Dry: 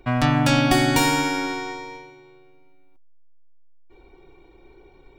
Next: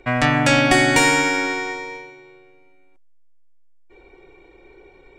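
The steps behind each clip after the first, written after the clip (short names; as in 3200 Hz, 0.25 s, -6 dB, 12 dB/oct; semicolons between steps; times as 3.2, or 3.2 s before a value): ten-band EQ 500 Hz +8 dB, 2000 Hz +11 dB, 8000 Hz +12 dB, 16000 Hz -11 dB; gain -2 dB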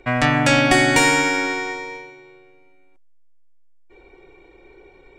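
nothing audible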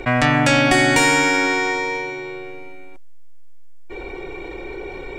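fast leveller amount 50%; gain -1 dB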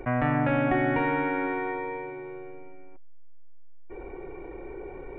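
Gaussian blur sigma 4.6 samples; gain -7 dB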